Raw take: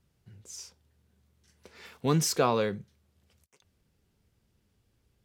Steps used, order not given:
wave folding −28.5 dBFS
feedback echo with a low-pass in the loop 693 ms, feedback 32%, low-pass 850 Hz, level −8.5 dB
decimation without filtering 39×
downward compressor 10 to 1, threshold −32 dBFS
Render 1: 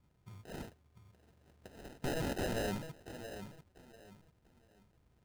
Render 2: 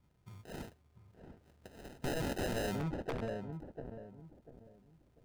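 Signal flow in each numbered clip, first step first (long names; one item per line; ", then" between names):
wave folding, then downward compressor, then feedback echo with a low-pass in the loop, then decimation without filtering
decimation without filtering, then feedback echo with a low-pass in the loop, then wave folding, then downward compressor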